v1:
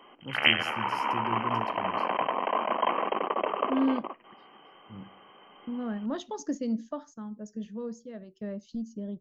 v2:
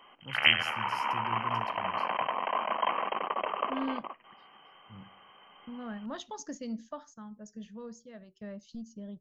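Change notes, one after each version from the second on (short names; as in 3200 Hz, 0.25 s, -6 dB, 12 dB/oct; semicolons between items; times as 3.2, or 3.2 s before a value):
master: add bell 330 Hz -10.5 dB 1.7 oct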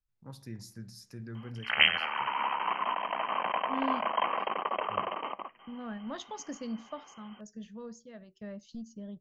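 background: entry +1.35 s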